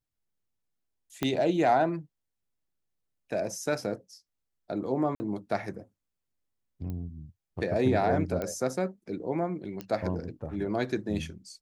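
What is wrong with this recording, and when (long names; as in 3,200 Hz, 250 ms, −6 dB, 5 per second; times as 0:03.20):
0:01.23: click −13 dBFS
0:05.15–0:05.20: drop-out 50 ms
0:06.90: click −26 dBFS
0:08.42: click −19 dBFS
0:09.81: click −21 dBFS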